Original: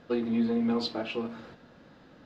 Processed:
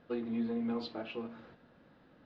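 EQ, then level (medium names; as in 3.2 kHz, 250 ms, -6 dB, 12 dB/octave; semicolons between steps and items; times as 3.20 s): low-pass 3.7 kHz 12 dB/octave; -7.5 dB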